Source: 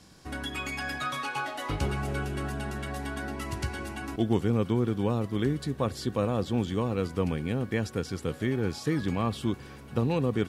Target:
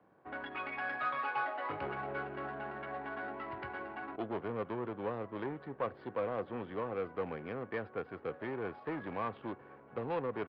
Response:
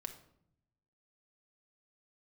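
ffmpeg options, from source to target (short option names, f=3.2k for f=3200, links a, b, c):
-filter_complex "[0:a]highpass=f=90:w=0.5412,highpass=f=90:w=1.3066,adynamicsmooth=sensitivity=5:basefreq=960,aresample=11025,asoftclip=type=tanh:threshold=-22.5dB,aresample=44100,acrossover=split=410 2700:gain=0.141 1 0.0708[a][b][c];[a][b][c]amix=inputs=3:normalize=0"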